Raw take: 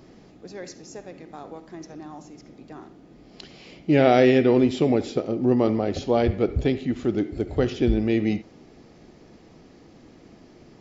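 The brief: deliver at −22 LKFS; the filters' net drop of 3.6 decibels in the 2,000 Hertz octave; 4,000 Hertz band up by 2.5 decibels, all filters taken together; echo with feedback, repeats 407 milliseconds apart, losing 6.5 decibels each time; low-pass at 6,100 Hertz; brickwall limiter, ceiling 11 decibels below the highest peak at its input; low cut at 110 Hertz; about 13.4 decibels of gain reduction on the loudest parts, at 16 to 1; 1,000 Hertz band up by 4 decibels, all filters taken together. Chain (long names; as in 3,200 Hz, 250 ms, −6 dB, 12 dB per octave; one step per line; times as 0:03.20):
high-pass filter 110 Hz
low-pass filter 6,100 Hz
parametric band 1,000 Hz +8 dB
parametric band 2,000 Hz −8.5 dB
parametric band 4,000 Hz +6.5 dB
downward compressor 16 to 1, threshold −23 dBFS
brickwall limiter −23 dBFS
repeating echo 407 ms, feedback 47%, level −6.5 dB
level +12 dB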